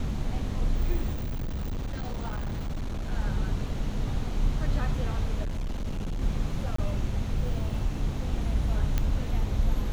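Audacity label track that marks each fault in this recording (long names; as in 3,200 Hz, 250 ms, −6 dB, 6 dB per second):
1.130000	3.120000	clipping −28 dBFS
5.430000	6.220000	clipping −27.5 dBFS
6.760000	6.780000	drop-out 24 ms
8.980000	8.980000	click −13 dBFS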